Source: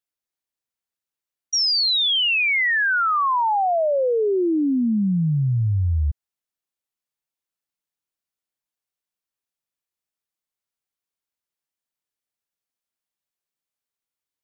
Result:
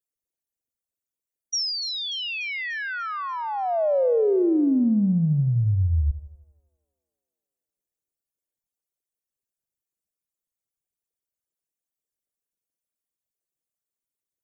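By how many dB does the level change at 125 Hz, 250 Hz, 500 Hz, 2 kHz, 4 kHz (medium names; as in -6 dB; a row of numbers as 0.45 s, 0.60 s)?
-1.0 dB, 0.0 dB, -0.5 dB, -10.5 dB, -9.0 dB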